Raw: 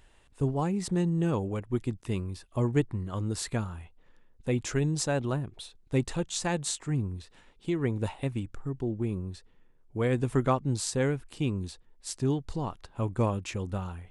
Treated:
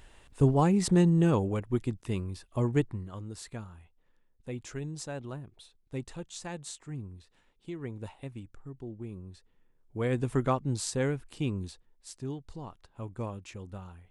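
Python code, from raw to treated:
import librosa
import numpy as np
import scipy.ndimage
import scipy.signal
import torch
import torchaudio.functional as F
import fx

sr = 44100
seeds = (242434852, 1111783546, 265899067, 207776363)

y = fx.gain(x, sr, db=fx.line((0.99, 5.0), (1.99, -1.0), (2.84, -1.0), (3.25, -10.0), (9.12, -10.0), (10.14, -2.0), (11.62, -2.0), (12.13, -9.5)))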